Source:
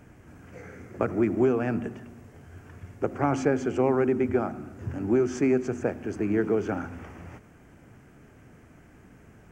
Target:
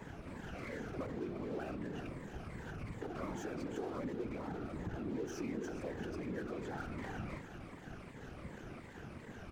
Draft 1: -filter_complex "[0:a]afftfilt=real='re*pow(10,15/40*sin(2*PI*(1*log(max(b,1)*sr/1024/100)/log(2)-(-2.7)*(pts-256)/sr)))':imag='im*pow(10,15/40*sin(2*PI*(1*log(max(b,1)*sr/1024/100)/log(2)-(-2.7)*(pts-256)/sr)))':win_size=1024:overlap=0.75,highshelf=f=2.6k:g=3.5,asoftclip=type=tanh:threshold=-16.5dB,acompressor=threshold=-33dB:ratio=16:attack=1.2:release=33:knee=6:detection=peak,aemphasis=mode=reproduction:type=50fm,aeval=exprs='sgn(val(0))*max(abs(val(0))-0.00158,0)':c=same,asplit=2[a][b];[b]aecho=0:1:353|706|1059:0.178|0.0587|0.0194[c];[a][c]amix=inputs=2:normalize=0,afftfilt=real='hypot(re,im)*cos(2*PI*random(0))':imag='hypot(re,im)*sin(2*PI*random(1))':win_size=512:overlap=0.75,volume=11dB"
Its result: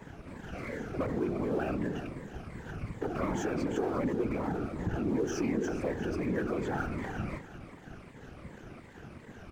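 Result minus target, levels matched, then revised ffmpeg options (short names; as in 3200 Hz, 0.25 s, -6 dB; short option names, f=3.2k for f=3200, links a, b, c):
compressor: peak gain reduction -8.5 dB
-filter_complex "[0:a]afftfilt=real='re*pow(10,15/40*sin(2*PI*(1*log(max(b,1)*sr/1024/100)/log(2)-(-2.7)*(pts-256)/sr)))':imag='im*pow(10,15/40*sin(2*PI*(1*log(max(b,1)*sr/1024/100)/log(2)-(-2.7)*(pts-256)/sr)))':win_size=1024:overlap=0.75,highshelf=f=2.6k:g=3.5,asoftclip=type=tanh:threshold=-16.5dB,acompressor=threshold=-42dB:ratio=16:attack=1.2:release=33:knee=6:detection=peak,aemphasis=mode=reproduction:type=50fm,aeval=exprs='sgn(val(0))*max(abs(val(0))-0.00158,0)':c=same,asplit=2[a][b];[b]aecho=0:1:353|706|1059:0.178|0.0587|0.0194[c];[a][c]amix=inputs=2:normalize=0,afftfilt=real='hypot(re,im)*cos(2*PI*random(0))':imag='hypot(re,im)*sin(2*PI*random(1))':win_size=512:overlap=0.75,volume=11dB"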